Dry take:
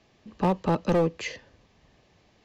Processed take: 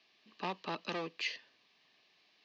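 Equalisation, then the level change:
high-frequency loss of the air 150 metres
loudspeaker in its box 160–4,800 Hz, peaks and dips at 530 Hz −9 dB, 860 Hz −6 dB, 1,400 Hz −7 dB, 2,000 Hz −4 dB, 3,300 Hz −3 dB
first difference
+12.5 dB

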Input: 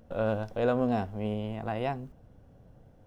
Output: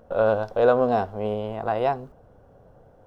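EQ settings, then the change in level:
flat-topped bell 760 Hz +9.5 dB 2.3 octaves
dynamic equaliser 4,200 Hz, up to +7 dB, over −53 dBFS, Q 1.7
0.0 dB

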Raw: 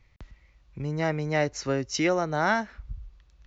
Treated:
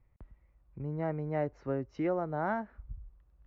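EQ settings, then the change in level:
low-pass filter 1,100 Hz 12 dB per octave
−6.0 dB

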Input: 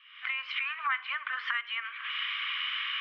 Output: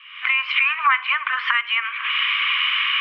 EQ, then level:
graphic EQ with 15 bands 400 Hz +4 dB, 1,000 Hz +10 dB, 2,500 Hz +9 dB
+6.0 dB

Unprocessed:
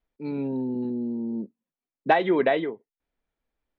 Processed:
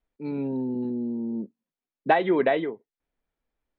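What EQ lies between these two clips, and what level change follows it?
high-frequency loss of the air 100 metres
0.0 dB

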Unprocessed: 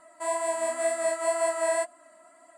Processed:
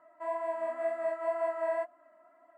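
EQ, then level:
high-pass filter 410 Hz 6 dB per octave
high-frequency loss of the air 270 metres
parametric band 4,300 Hz −14.5 dB 1.5 octaves
−2.0 dB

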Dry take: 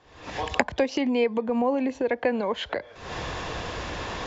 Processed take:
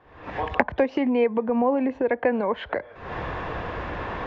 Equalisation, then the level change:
Chebyshev low-pass filter 1,700 Hz, order 2
+3.0 dB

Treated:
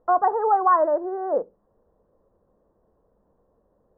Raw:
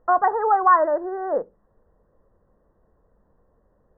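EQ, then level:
low-pass filter 1,000 Hz 12 dB per octave
low-shelf EQ 90 Hz −10.5 dB
parametric band 140 Hz −2.5 dB
+1.0 dB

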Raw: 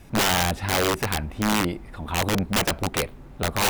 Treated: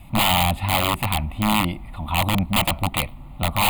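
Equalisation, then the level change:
phaser with its sweep stopped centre 1,600 Hz, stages 6
+5.5 dB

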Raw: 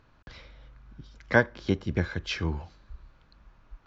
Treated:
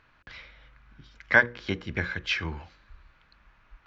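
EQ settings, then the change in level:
parametric band 2,100 Hz +12.5 dB 1.9 octaves
mains-hum notches 60/120/180/240/300/360/420/480/540 Hz
−5.0 dB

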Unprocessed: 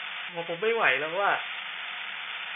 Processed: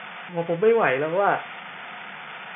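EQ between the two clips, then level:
high-pass filter 120 Hz
low-pass filter 1,500 Hz 6 dB per octave
spectral tilt −3.5 dB per octave
+5.5 dB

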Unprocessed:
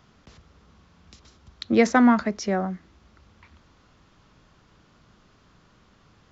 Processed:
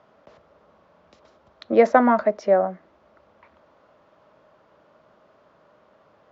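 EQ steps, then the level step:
resonant band-pass 770 Hz, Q 0.71
parametric band 610 Hz +12.5 dB 0.54 octaves
notch filter 720 Hz, Q 13
+2.5 dB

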